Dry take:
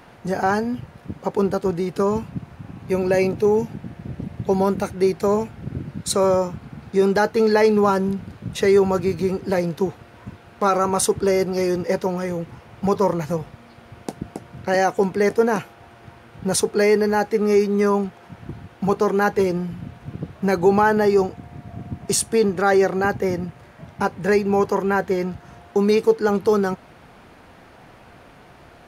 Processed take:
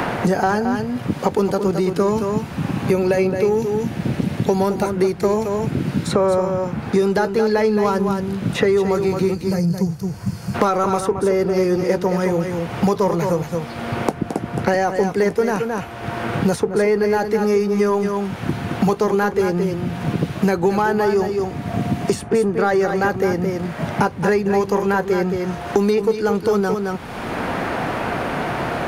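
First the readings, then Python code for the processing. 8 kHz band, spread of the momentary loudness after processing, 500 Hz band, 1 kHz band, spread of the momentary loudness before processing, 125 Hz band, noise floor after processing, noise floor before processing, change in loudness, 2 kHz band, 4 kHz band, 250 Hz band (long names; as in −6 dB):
−5.5 dB, 7 LU, +1.5 dB, +1.5 dB, 17 LU, +5.5 dB, −31 dBFS, −47 dBFS, +0.5 dB, +2.0 dB, +0.5 dB, +3.5 dB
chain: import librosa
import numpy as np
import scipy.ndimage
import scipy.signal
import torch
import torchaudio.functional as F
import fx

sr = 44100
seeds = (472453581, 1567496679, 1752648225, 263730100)

p1 = fx.spec_box(x, sr, start_s=9.34, length_s=1.21, low_hz=210.0, high_hz=4200.0, gain_db=-15)
p2 = 10.0 ** (-22.0 / 20.0) * np.tanh(p1 / 10.0 ** (-22.0 / 20.0))
p3 = p1 + F.gain(torch.from_numpy(p2), -8.0).numpy()
p4 = p3 + 10.0 ** (-8.5 / 20.0) * np.pad(p3, (int(219 * sr / 1000.0), 0))[:len(p3)]
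p5 = fx.band_squash(p4, sr, depth_pct=100)
y = F.gain(torch.from_numpy(p5), -1.0).numpy()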